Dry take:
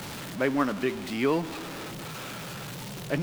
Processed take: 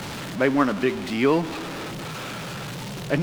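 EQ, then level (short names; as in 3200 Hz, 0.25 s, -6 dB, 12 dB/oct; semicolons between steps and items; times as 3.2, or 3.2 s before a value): high shelf 10000 Hz -10 dB; +5.5 dB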